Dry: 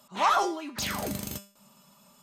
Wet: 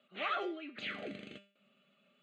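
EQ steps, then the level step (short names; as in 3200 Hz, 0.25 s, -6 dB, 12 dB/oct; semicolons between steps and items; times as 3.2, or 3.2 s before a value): speaker cabinet 350–4000 Hz, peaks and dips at 860 Hz -4 dB, 1700 Hz -4 dB, 3600 Hz -3 dB; fixed phaser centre 2300 Hz, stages 4; -2.5 dB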